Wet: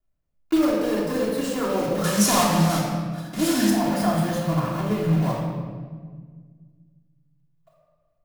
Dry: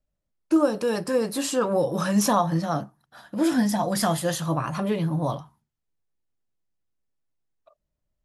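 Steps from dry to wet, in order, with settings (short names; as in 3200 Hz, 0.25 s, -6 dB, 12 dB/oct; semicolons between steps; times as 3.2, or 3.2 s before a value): block floating point 3-bit; bell 7800 Hz -6 dB 2.8 oct, from 2.04 s +7 dB, from 3.7 s -7.5 dB; shoebox room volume 1900 m³, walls mixed, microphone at 3.2 m; gain -5 dB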